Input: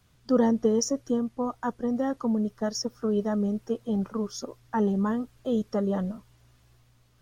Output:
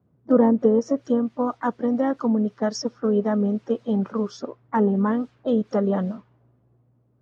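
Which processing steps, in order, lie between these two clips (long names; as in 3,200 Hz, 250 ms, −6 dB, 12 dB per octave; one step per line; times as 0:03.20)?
treble cut that deepens with the level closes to 1,300 Hz, closed at −19.5 dBFS
high-pass filter 150 Hz 12 dB per octave
low-pass that shuts in the quiet parts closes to 470 Hz, open at −25.5 dBFS
pitch-shifted copies added +3 semitones −17 dB
level +5.5 dB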